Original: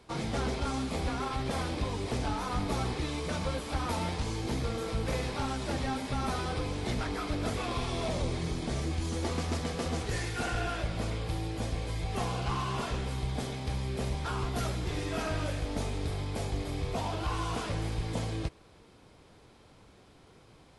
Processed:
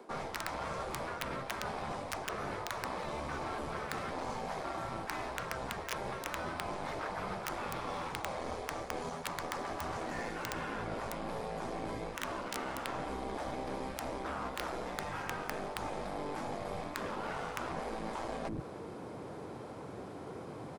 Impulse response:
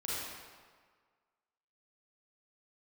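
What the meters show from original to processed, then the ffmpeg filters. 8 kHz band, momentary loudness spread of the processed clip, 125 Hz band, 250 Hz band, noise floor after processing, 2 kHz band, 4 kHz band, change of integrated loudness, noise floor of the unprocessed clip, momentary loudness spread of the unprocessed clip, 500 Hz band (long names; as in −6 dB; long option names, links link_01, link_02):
−5.0 dB, 2 LU, −14.0 dB, −8.0 dB, −45 dBFS, −1.5 dB, −7.0 dB, −6.0 dB, −58 dBFS, 2 LU, −3.0 dB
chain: -filter_complex "[0:a]acrossover=split=1800[link_01][link_02];[link_02]asoftclip=type=tanh:threshold=-38dB[link_03];[link_01][link_03]amix=inputs=2:normalize=0,acrossover=split=6800[link_04][link_05];[link_05]acompressor=threshold=-58dB:ratio=4:attack=1:release=60[link_06];[link_04][link_06]amix=inputs=2:normalize=0,highpass=160,equalizer=frequency=3300:width_type=o:width=2.1:gain=-12.5,acrossover=split=220[link_07][link_08];[link_07]adelay=110[link_09];[link_09][link_08]amix=inputs=2:normalize=0,aeval=exprs='0.0668*(cos(1*acos(clip(val(0)/0.0668,-1,1)))-cos(1*PI/2))+0.00531*(cos(6*acos(clip(val(0)/0.0668,-1,1)))-cos(6*PI/2))':channel_layout=same,highshelf=frequency=4700:gain=-10.5,aeval=exprs='(mod(20*val(0)+1,2)-1)/20':channel_layout=same,afftfilt=real='re*lt(hypot(re,im),0.0398)':imag='im*lt(hypot(re,im),0.0398)':win_size=1024:overlap=0.75,areverse,acompressor=threshold=-53dB:ratio=6,areverse,volume=17dB"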